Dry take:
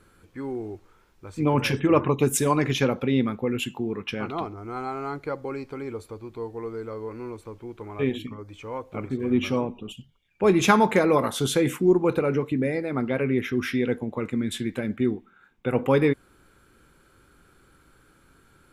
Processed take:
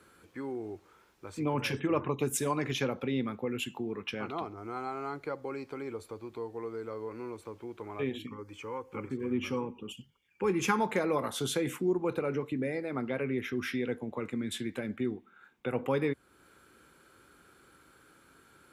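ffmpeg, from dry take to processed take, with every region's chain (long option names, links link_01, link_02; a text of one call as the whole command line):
ffmpeg -i in.wav -filter_complex "[0:a]asettb=1/sr,asplit=3[link_01][link_02][link_03];[link_01]atrim=end=8.264[link_04];[link_02]atrim=start=8.26:end=10.79,asetpts=PTS-STARTPTS,afade=type=in:duration=0.004:curve=qsin,afade=type=out:start_time=2.526:duration=0.004:curve=qsin,asuperstop=centerf=660:order=8:qfactor=3.2,equalizer=frequency=3800:width=7.6:gain=-13.5[link_05];[link_03]atrim=start=10.786[link_06];[link_04][link_05]acrossfade=duration=0.004:curve1=hsin:curve2=qsin[link_07];[link_07][link_06]acrossfade=duration=0.004:curve1=qsin:curve2=hsin,highpass=89,equalizer=frequency=120:width=0.71:gain=-6.5,acrossover=split=130[link_08][link_09];[link_09]acompressor=threshold=-42dB:ratio=1.5[link_10];[link_08][link_10]amix=inputs=2:normalize=0" out.wav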